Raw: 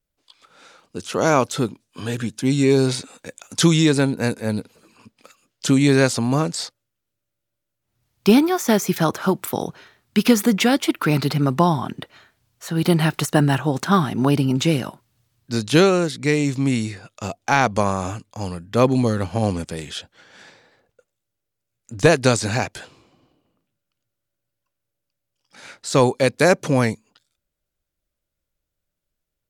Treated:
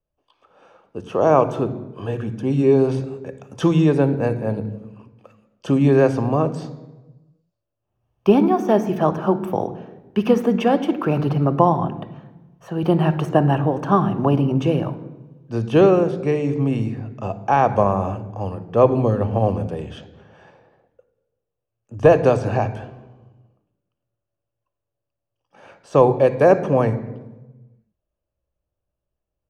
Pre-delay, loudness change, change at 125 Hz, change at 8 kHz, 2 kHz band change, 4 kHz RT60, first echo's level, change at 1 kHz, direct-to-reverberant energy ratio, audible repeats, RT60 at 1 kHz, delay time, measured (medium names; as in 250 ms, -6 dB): 3 ms, +0.5 dB, +0.5 dB, under -15 dB, -7.5 dB, 0.80 s, no echo, +2.0 dB, 11.0 dB, no echo, 1.1 s, no echo